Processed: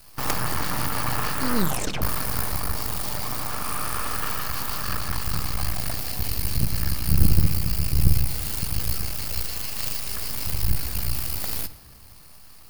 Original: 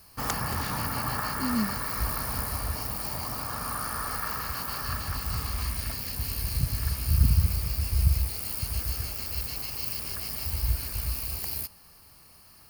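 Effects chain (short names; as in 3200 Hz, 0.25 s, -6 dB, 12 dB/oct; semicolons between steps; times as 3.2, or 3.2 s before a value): 1.57 tape stop 0.45 s; 5.57–6.31 bell 710 Hz +9 dB 0.4 oct; 9.43–10.07 steep high-pass 460 Hz 36 dB/oct; half-wave rectifier; shoebox room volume 2200 m³, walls mixed, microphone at 0.44 m; gain +7.5 dB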